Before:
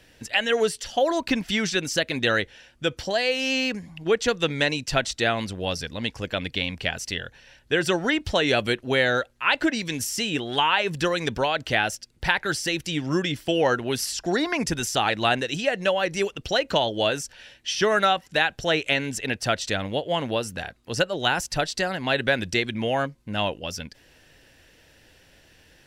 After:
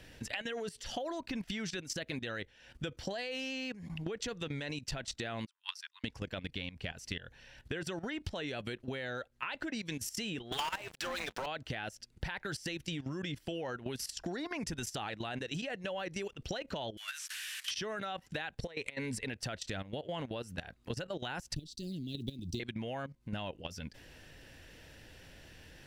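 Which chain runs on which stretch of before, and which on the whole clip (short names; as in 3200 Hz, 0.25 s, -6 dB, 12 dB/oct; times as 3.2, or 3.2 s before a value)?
5.46–6.04 steep high-pass 930 Hz 96 dB/oct + upward expander 2.5:1, over -46 dBFS
10.52–11.46 HPF 660 Hz + AM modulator 280 Hz, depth 70% + sample leveller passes 5
16.97–17.71 delta modulation 64 kbps, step -37.5 dBFS + inverse Chebyshev high-pass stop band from 540 Hz, stop band 50 dB + high shelf 8700 Hz +7.5 dB
18.58–19.26 ripple EQ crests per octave 0.93, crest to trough 9 dB + negative-ratio compressor -26 dBFS, ratio -0.5
21.55–22.6 block floating point 7-bit + Chebyshev band-stop 330–3800 Hz, order 3 + high shelf 2400 Hz -3 dB
whole clip: level quantiser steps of 15 dB; tone controls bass +4 dB, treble -2 dB; compressor 8:1, threshold -40 dBFS; gain +4 dB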